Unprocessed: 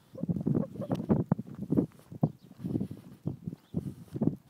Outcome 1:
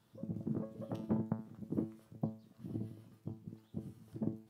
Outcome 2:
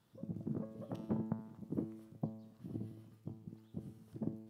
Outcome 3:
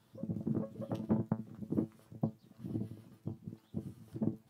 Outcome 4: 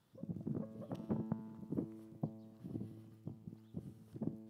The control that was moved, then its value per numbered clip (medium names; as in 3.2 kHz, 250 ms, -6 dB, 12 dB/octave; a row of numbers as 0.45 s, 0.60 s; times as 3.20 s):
feedback comb, decay: 0.41 s, 0.95 s, 0.18 s, 2 s